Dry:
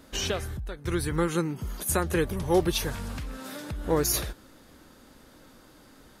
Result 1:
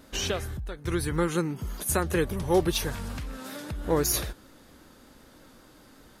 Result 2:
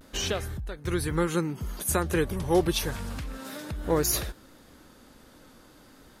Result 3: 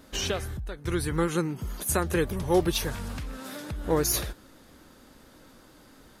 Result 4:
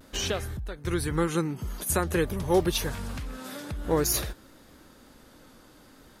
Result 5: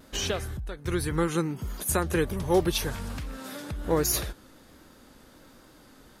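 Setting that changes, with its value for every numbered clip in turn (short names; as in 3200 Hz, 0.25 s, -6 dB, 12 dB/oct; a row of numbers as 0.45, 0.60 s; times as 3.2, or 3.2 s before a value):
vibrato, rate: 5.2, 0.33, 8.8, 0.5, 1.3 Hz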